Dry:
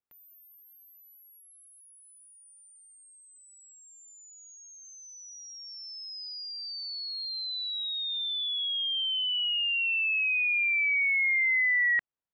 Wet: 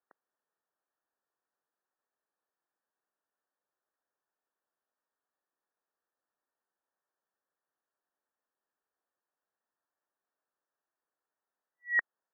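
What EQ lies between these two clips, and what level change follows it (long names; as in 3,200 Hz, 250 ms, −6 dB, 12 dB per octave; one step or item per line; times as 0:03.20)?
high-pass filter 370 Hz
linear-phase brick-wall low-pass 1,900 Hz
+8.0 dB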